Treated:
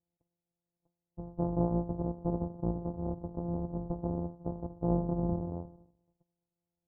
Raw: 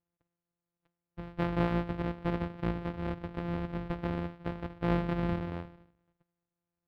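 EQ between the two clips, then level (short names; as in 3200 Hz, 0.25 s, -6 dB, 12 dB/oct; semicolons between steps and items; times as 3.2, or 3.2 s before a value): steep low-pass 870 Hz 36 dB/oct; 0.0 dB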